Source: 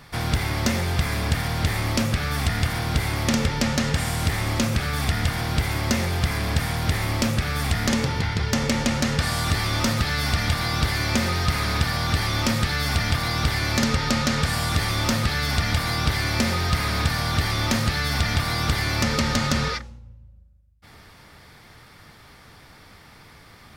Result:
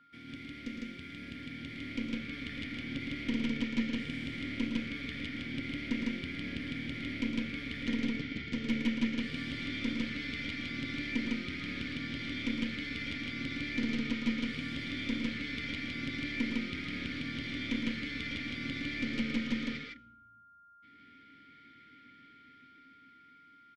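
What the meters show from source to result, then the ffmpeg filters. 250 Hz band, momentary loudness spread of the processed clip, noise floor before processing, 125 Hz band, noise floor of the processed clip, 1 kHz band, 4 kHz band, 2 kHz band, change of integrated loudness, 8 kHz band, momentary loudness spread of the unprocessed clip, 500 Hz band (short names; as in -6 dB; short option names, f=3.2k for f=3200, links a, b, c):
-7.0 dB, 9 LU, -49 dBFS, -21.5 dB, -59 dBFS, -24.0 dB, -14.5 dB, -11.0 dB, -13.0 dB, under -25 dB, 2 LU, -17.0 dB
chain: -filter_complex "[0:a]acrossover=split=5100[a][b];[a]dynaudnorm=f=420:g=9:m=11dB[c];[c][b]amix=inputs=2:normalize=0,asplit=3[d][e][f];[d]bandpass=f=270:t=q:w=8,volume=0dB[g];[e]bandpass=f=2.29k:t=q:w=8,volume=-6dB[h];[f]bandpass=f=3.01k:t=q:w=8,volume=-9dB[i];[g][h][i]amix=inputs=3:normalize=0,aeval=exprs='val(0)+0.00251*sin(2*PI*1400*n/s)':c=same,aeval=exprs='0.282*(cos(1*acos(clip(val(0)/0.282,-1,1)))-cos(1*PI/2))+0.02*(cos(6*acos(clip(val(0)/0.282,-1,1)))-cos(6*PI/2))':c=same,aecho=1:1:110.8|154.5:0.398|0.891,volume=-9dB"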